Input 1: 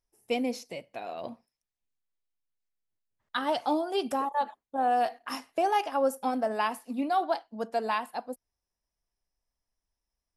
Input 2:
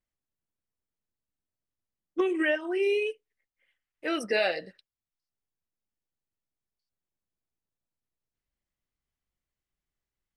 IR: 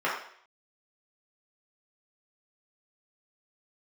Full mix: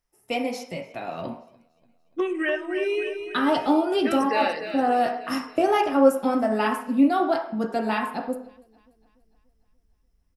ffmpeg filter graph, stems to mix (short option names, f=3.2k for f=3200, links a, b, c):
-filter_complex "[0:a]asubboost=boost=11:cutoff=240,acrossover=split=350[a][b];[a]acompressor=threshold=-37dB:ratio=2[c];[c][b]amix=inputs=2:normalize=0,volume=2dB,asplit=3[d][e][f];[e]volume=-10dB[g];[f]volume=-23.5dB[h];[1:a]deesser=0.85,volume=-0.5dB,asplit=3[i][j][k];[j]volume=-22dB[l];[k]volume=-8dB[m];[2:a]atrim=start_sample=2205[n];[g][l]amix=inputs=2:normalize=0[o];[o][n]afir=irnorm=-1:irlink=0[p];[h][m]amix=inputs=2:normalize=0,aecho=0:1:291|582|873|1164|1455|1746|2037|2328:1|0.52|0.27|0.141|0.0731|0.038|0.0198|0.0103[q];[d][i][p][q]amix=inputs=4:normalize=0"